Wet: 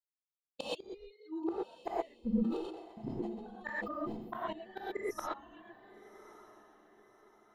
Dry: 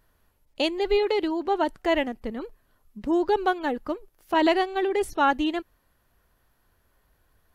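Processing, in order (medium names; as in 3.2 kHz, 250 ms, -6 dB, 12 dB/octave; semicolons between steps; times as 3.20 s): expander on every frequency bin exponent 3; gate with hold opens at -47 dBFS; treble shelf 7.9 kHz +5 dB; touch-sensitive flanger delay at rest 10.1 ms, full sweep at -23 dBFS; inverted gate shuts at -31 dBFS, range -37 dB; echo that smears into a reverb 1127 ms, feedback 43%, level -16 dB; gated-style reverb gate 150 ms rising, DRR -6.5 dB; 2.41–4.53 s: decay stretcher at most 52 dB/s; trim +5 dB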